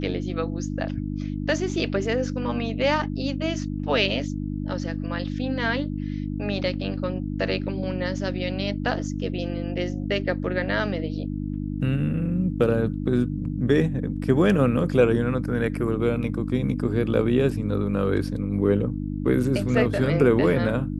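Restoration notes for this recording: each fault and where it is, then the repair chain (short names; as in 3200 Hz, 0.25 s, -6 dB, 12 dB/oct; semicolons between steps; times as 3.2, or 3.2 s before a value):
hum 50 Hz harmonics 6 -29 dBFS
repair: de-hum 50 Hz, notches 6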